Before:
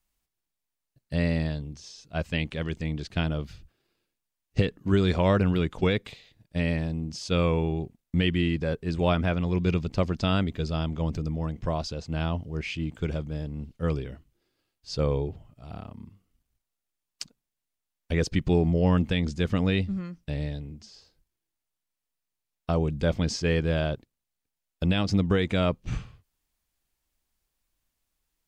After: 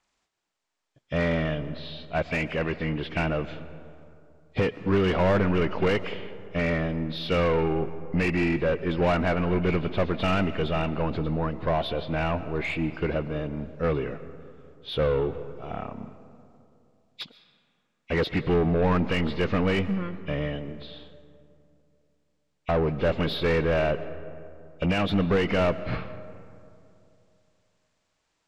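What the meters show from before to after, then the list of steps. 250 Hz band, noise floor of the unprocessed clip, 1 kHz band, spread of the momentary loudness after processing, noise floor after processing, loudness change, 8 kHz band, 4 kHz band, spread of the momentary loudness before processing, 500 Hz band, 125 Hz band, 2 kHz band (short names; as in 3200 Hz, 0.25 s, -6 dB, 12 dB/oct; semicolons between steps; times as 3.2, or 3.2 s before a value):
0.0 dB, -85 dBFS, +5.0 dB, 15 LU, -75 dBFS, +1.0 dB, n/a, 0.0 dB, 13 LU, +4.0 dB, -2.0 dB, +4.5 dB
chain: nonlinear frequency compression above 1900 Hz 1.5:1; overdrive pedal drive 24 dB, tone 1300 Hz, clips at -11 dBFS; digital reverb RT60 2.7 s, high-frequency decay 0.4×, pre-delay 85 ms, DRR 14 dB; gain -3 dB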